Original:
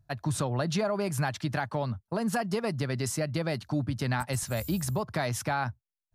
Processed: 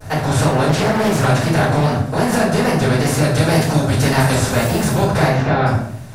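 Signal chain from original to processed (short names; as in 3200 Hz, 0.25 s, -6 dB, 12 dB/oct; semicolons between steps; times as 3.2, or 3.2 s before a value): per-bin compression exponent 0.4; 3.22–4.35 high shelf 4500 Hz +6 dB; wow and flutter 130 cents; 5.26–5.66 air absorption 220 m; shoebox room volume 120 m³, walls mixed, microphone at 4.6 m; 0.69–1.27 Doppler distortion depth 0.65 ms; gain -6.5 dB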